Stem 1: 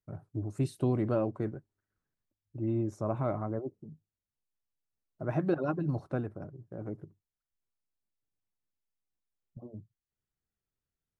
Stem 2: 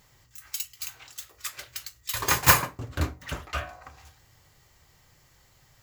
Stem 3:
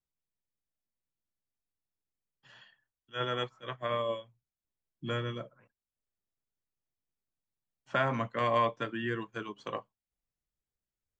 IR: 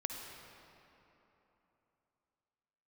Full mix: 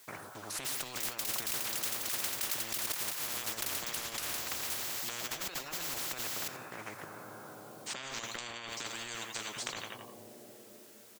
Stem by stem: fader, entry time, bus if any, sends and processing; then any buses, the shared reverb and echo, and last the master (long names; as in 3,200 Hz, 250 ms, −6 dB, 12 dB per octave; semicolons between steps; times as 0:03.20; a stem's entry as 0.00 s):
+1.0 dB, 0.00 s, send −12 dB, no echo send, no processing
−1.0 dB, 0.65 s, no send, echo send −16.5 dB, no processing
−1.0 dB, 0.00 s, no send, echo send −16 dB, high-shelf EQ 3,600 Hz +8.5 dB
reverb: on, RT60 3.4 s, pre-delay 48 ms
echo: repeating echo 87 ms, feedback 28%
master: high-pass filter 480 Hz 12 dB per octave; compressor whose output falls as the input rises −40 dBFS, ratio −1; every bin compressed towards the loudest bin 10 to 1